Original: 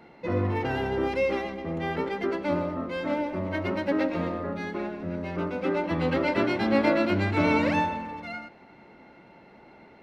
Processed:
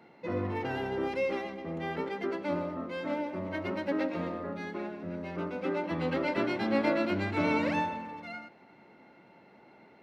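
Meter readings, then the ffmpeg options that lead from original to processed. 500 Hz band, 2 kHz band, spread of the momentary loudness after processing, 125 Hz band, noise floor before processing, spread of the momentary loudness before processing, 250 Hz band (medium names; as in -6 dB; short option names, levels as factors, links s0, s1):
-5.0 dB, -5.0 dB, 10 LU, -7.5 dB, -53 dBFS, 10 LU, -5.0 dB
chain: -af "highpass=110,volume=0.562"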